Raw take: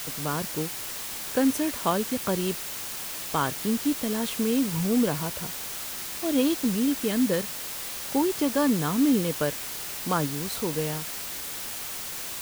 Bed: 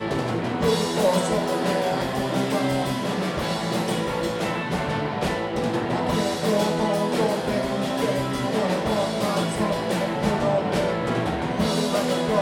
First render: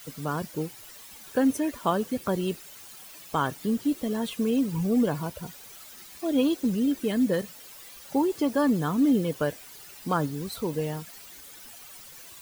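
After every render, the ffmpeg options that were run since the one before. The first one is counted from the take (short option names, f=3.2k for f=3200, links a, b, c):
-af "afftdn=nr=14:nf=-35"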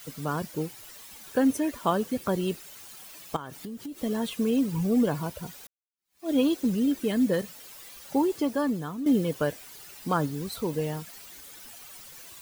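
-filter_complex "[0:a]asettb=1/sr,asplit=3[a][b][c];[a]atrim=end=3.364[d];[b]atrim=start=3.36:end=4.03,asetpts=PTS-STARTPTS,afade=t=in:d=0.004:c=qsin,afade=t=out:st=0.666:d=0.004:c=qsin,acompressor=threshold=-34dB:ratio=12:attack=3.2:release=140:knee=1:detection=peak[e];[c]atrim=start=4.026[f];[d][e]acrossfade=d=0.004:c1=hsin:c2=qsin[g];[g][f]acrossfade=d=0.004:c1=qsin:c2=hsin,asplit=3[h][i][j];[h]atrim=end=5.67,asetpts=PTS-STARTPTS,afade=t=out:st=5.666:d=0.004:c=hsin[k];[i]atrim=start=5.67:end=9.06,asetpts=PTS-STARTPTS,afade=t=in:d=0.63:c=exp,afade=t=out:st=2.62:d=0.77:silence=0.237137[l];[j]atrim=start=9.06,asetpts=PTS-STARTPTS,afade=t=in:d=0.004:c=hsin:silence=0.237137[m];[k][l][m]concat=n=3:v=0:a=1"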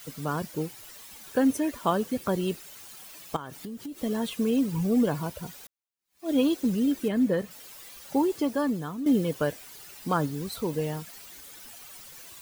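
-filter_complex "[0:a]asettb=1/sr,asplit=3[a][b][c];[a]atrim=end=7.084[d];[b]atrim=start=7.08:end=7.51,asetpts=PTS-STARTPTS,afade=t=in:d=0.004:c=qsin,afade=t=out:st=0.426:d=0.004:c=qsin,acrossover=split=2500[e][f];[f]acompressor=threshold=-49dB:ratio=4:attack=1:release=60[g];[e][g]amix=inputs=2:normalize=0[h];[c]atrim=start=7.506[i];[d][h]acrossfade=d=0.004:c1=hsin:c2=qsin[j];[j][i]acrossfade=d=0.004:c1=qsin:c2=hsin"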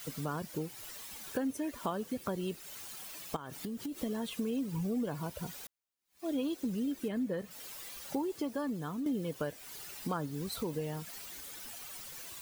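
-af "acompressor=threshold=-35dB:ratio=3"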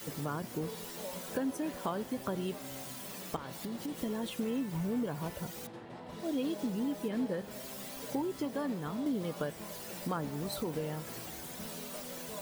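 -filter_complex "[1:a]volume=-23dB[a];[0:a][a]amix=inputs=2:normalize=0"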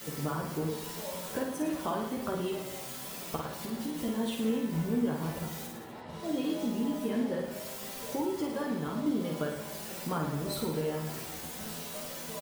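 -filter_complex "[0:a]asplit=2[a][b];[b]adelay=13,volume=-5.5dB[c];[a][c]amix=inputs=2:normalize=0,asplit=2[d][e];[e]aecho=0:1:50|107.5|173.6|249.7|337.1:0.631|0.398|0.251|0.158|0.1[f];[d][f]amix=inputs=2:normalize=0"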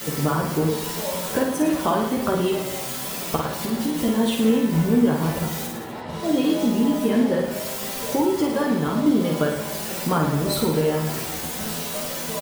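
-af "volume=11.5dB"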